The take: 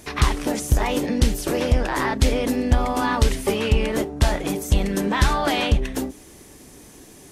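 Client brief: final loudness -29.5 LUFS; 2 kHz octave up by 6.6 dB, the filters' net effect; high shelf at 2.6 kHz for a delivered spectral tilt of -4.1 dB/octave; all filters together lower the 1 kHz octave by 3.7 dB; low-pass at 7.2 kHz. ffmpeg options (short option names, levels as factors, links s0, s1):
-af "lowpass=7200,equalizer=f=1000:t=o:g=-7.5,equalizer=f=2000:t=o:g=7,highshelf=f=2600:g=7,volume=0.355"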